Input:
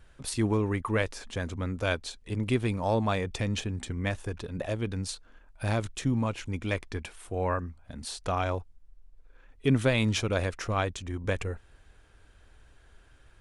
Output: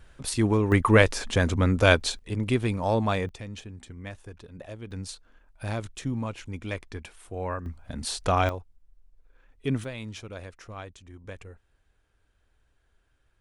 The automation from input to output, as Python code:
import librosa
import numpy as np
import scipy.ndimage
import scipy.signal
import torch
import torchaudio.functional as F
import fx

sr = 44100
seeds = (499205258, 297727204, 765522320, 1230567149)

y = fx.gain(x, sr, db=fx.steps((0.0, 3.5), (0.72, 10.0), (2.19, 2.0), (3.29, -9.0), (4.91, -3.0), (7.66, 6.0), (8.49, -3.5), (9.84, -12.0)))